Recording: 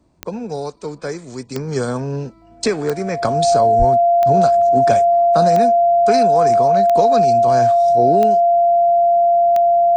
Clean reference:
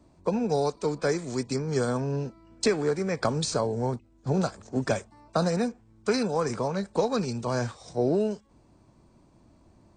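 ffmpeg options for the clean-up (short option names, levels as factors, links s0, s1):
-filter_complex "[0:a]adeclick=t=4,bandreject=f=690:w=30,asplit=3[s0][s1][s2];[s0]afade=t=out:st=3.78:d=0.02[s3];[s1]highpass=f=140:w=0.5412,highpass=f=140:w=1.3066,afade=t=in:st=3.78:d=0.02,afade=t=out:st=3.9:d=0.02[s4];[s2]afade=t=in:st=3.9:d=0.02[s5];[s3][s4][s5]amix=inputs=3:normalize=0,asetnsamples=n=441:p=0,asendcmd='1.56 volume volume -5.5dB',volume=1"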